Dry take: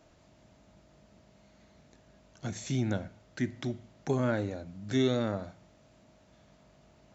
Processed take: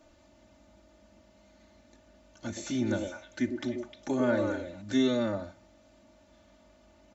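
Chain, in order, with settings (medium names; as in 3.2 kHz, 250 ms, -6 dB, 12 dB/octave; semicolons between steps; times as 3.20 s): comb 3.4 ms, depth 99%; 2.46–4.82 s: repeats whose band climbs or falls 102 ms, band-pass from 420 Hz, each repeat 1.4 oct, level -0.5 dB; trim -2 dB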